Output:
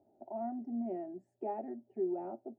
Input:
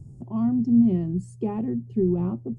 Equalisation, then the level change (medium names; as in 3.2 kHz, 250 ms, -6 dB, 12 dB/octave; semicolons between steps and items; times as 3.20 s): dynamic bell 760 Hz, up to -3 dB, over -42 dBFS, Q 1.1; ladder band-pass 670 Hz, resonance 65%; static phaser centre 740 Hz, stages 8; +11.0 dB